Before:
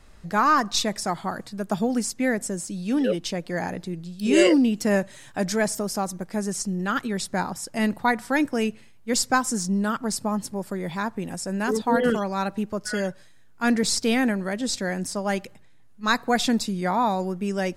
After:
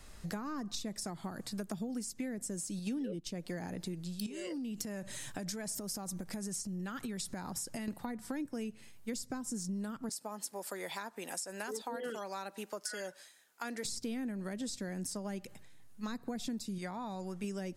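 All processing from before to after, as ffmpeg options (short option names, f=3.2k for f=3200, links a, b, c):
-filter_complex "[0:a]asettb=1/sr,asplit=3[a][b][c];[a]atrim=end=2.794[d];[b]atrim=start=2.79:end=3.3,asetpts=PTS-STARTPTS,afade=t=in:d=0.004:c=qsin,afade=t=out:st=0.506:d=0.004:c=qsin,agate=range=-11dB:threshold=-31dB:ratio=16:release=100:detection=peak,acontrast=68[e];[c]atrim=start=3.296[f];[d][e]acrossfade=d=0.004:c1=hsin:c2=qsin[g];[g][f]acrossfade=d=0.004:c1=qsin:c2=hsin,asettb=1/sr,asplit=3[h][i][j];[h]atrim=end=4.264[k];[i]atrim=start=4.26:end=7.88,asetpts=PTS-STARTPTS,afade=t=in:d=0.004:c=qsin,afade=t=out:st=3.616:d=0.004:c=qsin,bass=f=250:g=5,treble=f=4k:g=0,acompressor=threshold=-31dB:ratio=12:attack=3.2:release=140:knee=1:detection=peak[l];[j]atrim=start=7.876[m];[k][l]acrossfade=d=0.004:c1=hsin:c2=qsin[n];[n][m]acrossfade=d=0.004:c1=qsin:c2=hsin,asettb=1/sr,asplit=3[o][p][q];[o]atrim=end=10.094[r];[p]atrim=start=10.09:end=13.85,asetpts=PTS-STARTPTS,afade=t=in:d=0.004:c=qsin,afade=t=out:st=3.756:d=0.004:c=qsin,highpass=550,bandreject=f=1.1k:w=20[s];[q]atrim=start=13.846[t];[r][s]acrossfade=d=0.004:c1=hsin:c2=qsin[u];[u][t]acrossfade=d=0.004:c1=qsin:c2=hsin,asettb=1/sr,asplit=3[v][w][x];[v]atrim=end=16.784[y];[w]atrim=start=16.78:end=17.44,asetpts=PTS-STARTPTS,afade=t=in:d=0.004:c=qsin,afade=t=out:st=0.656:d=0.004:c=qsin,lowpass=9.8k,equalizer=f=270:w=0.58:g=-7[z];[x]atrim=start=17.436[aa];[y][z]acrossfade=d=0.004:c1=hsin:c2=qsin[ab];[ab][aa]acrossfade=d=0.004:c1=qsin:c2=hsin,acrossover=split=400[ac][ad];[ad]acompressor=threshold=-35dB:ratio=6[ae];[ac][ae]amix=inputs=2:normalize=0,highshelf=f=4.6k:g=9.5,acompressor=threshold=-34dB:ratio=6,volume=-2.5dB"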